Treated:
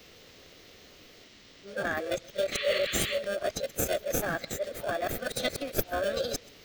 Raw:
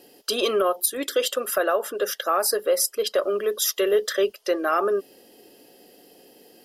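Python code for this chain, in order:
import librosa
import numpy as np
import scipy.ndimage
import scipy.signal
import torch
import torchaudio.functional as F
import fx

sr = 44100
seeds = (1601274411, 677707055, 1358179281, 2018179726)

p1 = np.flip(x).copy()
p2 = fx.spec_box(p1, sr, start_s=1.24, length_s=0.53, low_hz=320.0, high_hz=12000.0, gain_db=-16)
p3 = fx.dmg_noise_band(p2, sr, seeds[0], low_hz=950.0, high_hz=4300.0, level_db=-47.0)
p4 = fx.high_shelf(p3, sr, hz=5500.0, db=9.0)
p5 = fx.sample_hold(p4, sr, seeds[1], rate_hz=1000.0, jitter_pct=0)
p6 = p4 + (p5 * librosa.db_to_amplitude(-6.0))
p7 = fx.spec_paint(p6, sr, seeds[2], shape='noise', start_s=2.52, length_s=0.67, low_hz=1100.0, high_hz=3500.0, level_db=-24.0)
p8 = fx.graphic_eq_15(p7, sr, hz=(1000, 4000, 10000), db=(-6, -4, -11))
p9 = fx.formant_shift(p8, sr, semitones=4)
p10 = p9 + fx.echo_single(p9, sr, ms=130, db=-23.0, dry=0)
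y = p10 * librosa.db_to_amplitude(-8.5)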